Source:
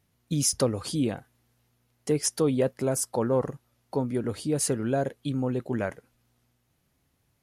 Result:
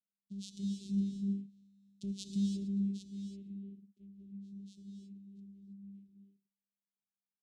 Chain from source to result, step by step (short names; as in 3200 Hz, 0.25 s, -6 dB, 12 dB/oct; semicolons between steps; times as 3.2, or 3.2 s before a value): Doppler pass-by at 1.59, 18 m/s, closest 1.5 m; in parallel at +2.5 dB: limiter -38 dBFS, peak gain reduction 8.5 dB; on the sum: vocoder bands 4, saw 198 Hz; Chebyshev band-stop 280–3500 Hz, order 3; high shelf 3700 Hz +7 dB; non-linear reverb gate 0.35 s rising, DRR 1.5 dB; three-band expander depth 40%